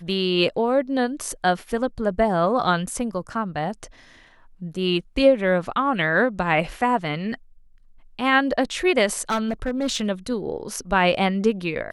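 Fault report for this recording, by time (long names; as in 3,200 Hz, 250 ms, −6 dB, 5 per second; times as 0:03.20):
0:09.29–0:10.08: clipping −18.5 dBFS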